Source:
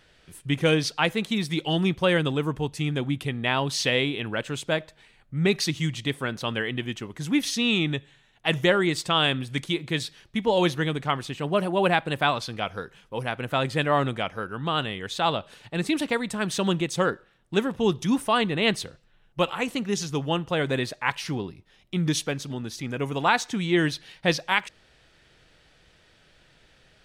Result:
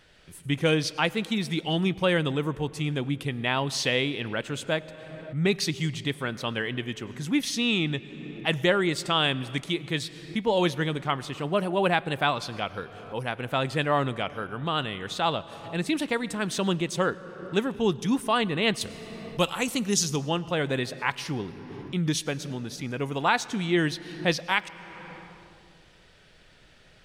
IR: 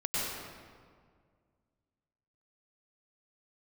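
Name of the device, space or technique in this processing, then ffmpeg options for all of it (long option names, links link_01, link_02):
ducked reverb: -filter_complex "[0:a]asettb=1/sr,asplit=3[link_01][link_02][link_03];[link_01]atrim=end=18.814[link_04];[link_02]atrim=start=18.81:end=20.16,asetpts=PTS-STARTPTS,afade=type=in:duration=0.004:curve=qsin,afade=type=out:start_time=1.346:duration=0.004:curve=qsin,bass=frequency=250:gain=4,treble=frequency=4000:gain=12[link_05];[link_03]atrim=start=20.156[link_06];[link_04][link_05]acrossfade=duration=0.004:curve1=hsin:curve2=qsin[link_07];[link_07][link_06]acrossfade=duration=0.004:curve1=qsin:curve2=hsin,asplit=3[link_08][link_09][link_10];[1:a]atrim=start_sample=2205[link_11];[link_09][link_11]afir=irnorm=-1:irlink=0[link_12];[link_10]apad=whole_len=1192732[link_13];[link_12][link_13]sidechaincompress=threshold=-48dB:ratio=3:attack=21:release=276,volume=-8.5dB[link_14];[link_08][link_14]amix=inputs=2:normalize=0,volume=-2dB"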